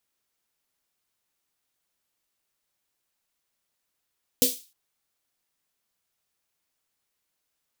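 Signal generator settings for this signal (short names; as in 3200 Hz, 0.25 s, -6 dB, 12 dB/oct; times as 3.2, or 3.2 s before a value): snare drum length 0.31 s, tones 260 Hz, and 490 Hz, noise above 3200 Hz, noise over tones 3.5 dB, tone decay 0.20 s, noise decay 0.35 s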